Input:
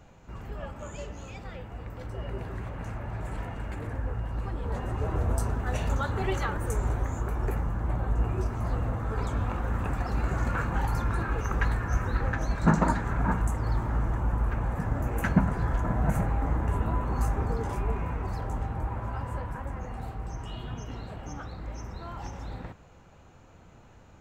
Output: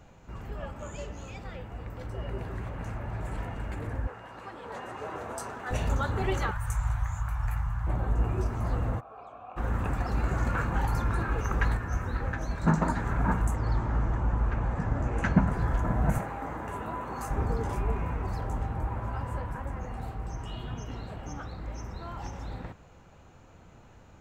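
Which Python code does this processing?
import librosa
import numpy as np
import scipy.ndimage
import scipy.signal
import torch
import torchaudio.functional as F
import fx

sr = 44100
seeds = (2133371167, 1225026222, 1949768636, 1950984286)

y = fx.weighting(x, sr, curve='A', at=(4.07, 5.71))
y = fx.cheby1_bandstop(y, sr, low_hz=120.0, high_hz=1000.0, order=2, at=(6.51, 7.87))
y = fx.vowel_filter(y, sr, vowel='a', at=(8.99, 9.56), fade=0.02)
y = fx.comb_fb(y, sr, f0_hz=81.0, decay_s=0.19, harmonics='all', damping=0.0, mix_pct=50, at=(11.77, 12.97))
y = fx.lowpass(y, sr, hz=7300.0, slope=24, at=(13.55, 15.47))
y = fx.highpass(y, sr, hz=420.0, slope=6, at=(16.18, 17.31))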